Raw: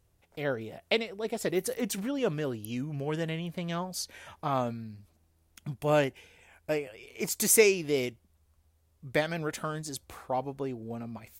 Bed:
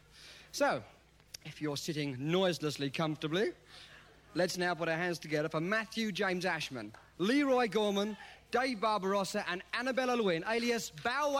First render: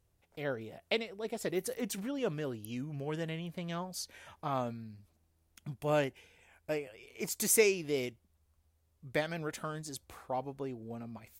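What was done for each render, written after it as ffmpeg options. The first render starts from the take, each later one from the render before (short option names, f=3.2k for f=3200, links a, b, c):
-af "volume=-5dB"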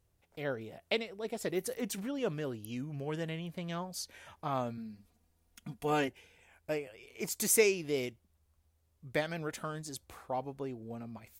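-filter_complex "[0:a]asettb=1/sr,asplit=3[a][b][c];[a]atrim=end=4.774[d];[b]atrim=start=4.77:end=6.08,asetpts=PTS-STARTPTS,afade=t=in:d=0.004:c=qsin,afade=t=out:st=1.306:d=0.004:c=qsin,aecho=1:1:4.2:0.76,atrim=end_sample=57771[e];[c]atrim=start=6.076[f];[d][e]acrossfade=d=0.004:c1=hsin:c2=qsin[g];[g][f]acrossfade=d=0.004:c1=qsin:c2=hsin"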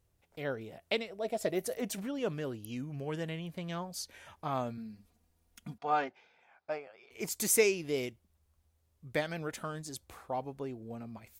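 -filter_complex "[0:a]asettb=1/sr,asplit=3[a][b][c];[a]atrim=end=1.104[d];[b]atrim=start=1.1:end=2,asetpts=PTS-STARTPTS,afade=t=in:d=0.004:c=qsin,afade=t=out:st=0.896:d=0.004:c=qsin,equalizer=f=640:t=o:w=0.25:g=13.5[e];[c]atrim=start=1.996[f];[d][e]acrossfade=d=0.004:c1=hsin:c2=qsin[g];[g][f]acrossfade=d=0.004:c1=qsin:c2=hsin,asettb=1/sr,asplit=3[h][i][j];[h]atrim=end=5.784[k];[i]atrim=start=5.78:end=7.11,asetpts=PTS-STARTPTS,afade=t=in:d=0.004:c=qsin,afade=t=out:st=1.326:d=0.004:c=qsin,highpass=290,equalizer=f=310:t=q:w=4:g=-7,equalizer=f=460:t=q:w=4:g=-6,equalizer=f=770:t=q:w=4:g=6,equalizer=f=1.3k:t=q:w=4:g=6,equalizer=f=1.9k:t=q:w=4:g=-4,equalizer=f=2.9k:t=q:w=4:g=-10,lowpass=f=4.6k:w=0.5412,lowpass=f=4.6k:w=1.3066[l];[j]atrim=start=7.106[m];[k][l]acrossfade=d=0.004:c1=hsin:c2=qsin[n];[n][m]acrossfade=d=0.004:c1=qsin:c2=hsin"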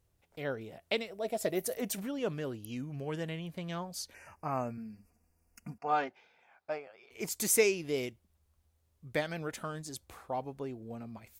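-filter_complex "[0:a]asettb=1/sr,asplit=3[a][b][c];[a]atrim=end=0.974[d];[b]atrim=start=0.97:end=2.15,asetpts=PTS-STARTPTS,afade=t=in:d=0.004:c=qsin,afade=t=out:st=1.176:d=0.004:c=qsin,highshelf=f=11k:g=10[e];[c]atrim=start=2.146[f];[d][e]acrossfade=d=0.004:c1=hsin:c2=qsin[g];[g][f]acrossfade=d=0.004:c1=qsin:c2=hsin,asplit=3[h][i][j];[h]afade=t=out:st=4.13:d=0.02[k];[i]asuperstop=centerf=3600:order=12:qfactor=2.1,afade=t=in:st=4.13:d=0.02,afade=t=out:st=5.88:d=0.02[l];[j]afade=t=in:st=5.88:d=0.02[m];[k][l][m]amix=inputs=3:normalize=0"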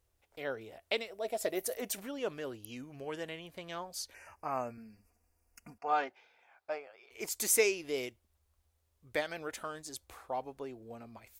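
-af "equalizer=f=160:t=o:w=1.2:g=-13.5"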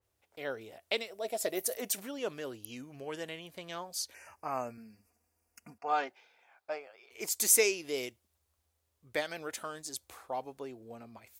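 -af "highpass=92,adynamicequalizer=threshold=0.00251:dfrequency=3400:dqfactor=0.7:tfrequency=3400:tqfactor=0.7:attack=5:release=100:ratio=0.375:range=2.5:mode=boostabove:tftype=highshelf"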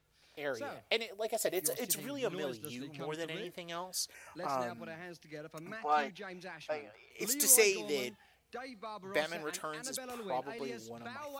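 -filter_complex "[1:a]volume=-13dB[a];[0:a][a]amix=inputs=2:normalize=0"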